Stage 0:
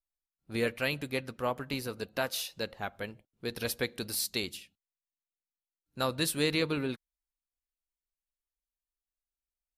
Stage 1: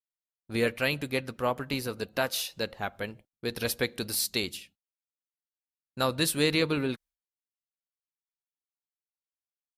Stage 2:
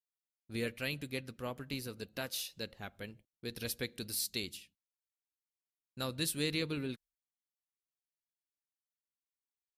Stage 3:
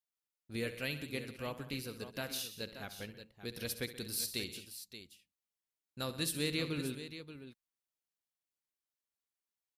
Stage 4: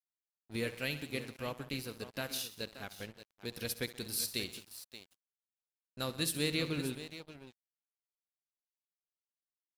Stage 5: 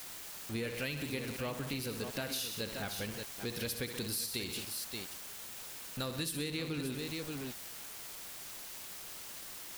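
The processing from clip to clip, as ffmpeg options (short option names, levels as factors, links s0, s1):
-af "agate=range=0.0224:threshold=0.002:ratio=3:detection=peak,volume=1.5"
-af "equalizer=f=890:t=o:w=2:g=-9,volume=0.473"
-af "aecho=1:1:67|128|178|578:0.211|0.15|0.141|0.266,volume=0.891"
-af "aeval=exprs='sgn(val(0))*max(abs(val(0))-0.002,0)':c=same,volume=1.33"
-af "aeval=exprs='val(0)+0.5*0.0188*sgn(val(0))':c=same,acompressor=threshold=0.02:ratio=6"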